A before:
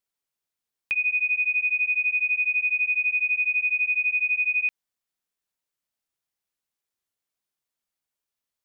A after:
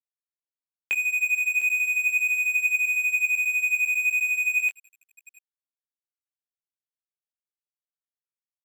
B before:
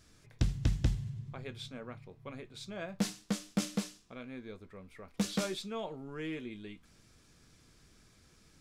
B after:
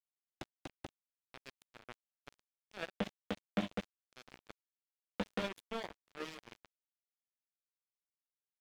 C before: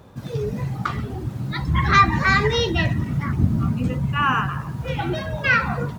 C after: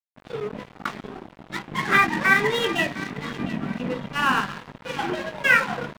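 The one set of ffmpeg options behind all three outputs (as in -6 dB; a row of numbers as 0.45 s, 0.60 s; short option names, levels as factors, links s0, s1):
-filter_complex "[0:a]asplit=2[s0][s1];[s1]acompressor=threshold=0.0158:ratio=6,volume=0.794[s2];[s0][s2]amix=inputs=2:normalize=0,asplit=2[s3][s4];[s4]adelay=20,volume=0.473[s5];[s3][s5]amix=inputs=2:normalize=0,acrusher=bits=9:mode=log:mix=0:aa=0.000001,highshelf=f=2800:g=-3,bandreject=f=50:t=h:w=6,bandreject=f=100:t=h:w=6,bandreject=f=150:t=h:w=6,bandreject=f=200:t=h:w=6,bandreject=f=250:t=h:w=6,bandreject=f=300:t=h:w=6,bandreject=f=350:t=h:w=6,flanger=delay=1:depth=5.5:regen=84:speed=0.37:shape=triangular,aresample=8000,aresample=44100,highpass=f=200:w=0.5412,highpass=f=200:w=1.3066,equalizer=f=1200:t=o:w=0.24:g=-8,asplit=2[s6][s7];[s7]aecho=0:1:705|1410|2115|2820:0.2|0.0798|0.0319|0.0128[s8];[s6][s8]amix=inputs=2:normalize=0,aeval=exprs='sgn(val(0))*max(abs(val(0))-0.0141,0)':c=same,volume=2.11"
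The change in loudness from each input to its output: 0.0 LU, -5.5 LU, -2.0 LU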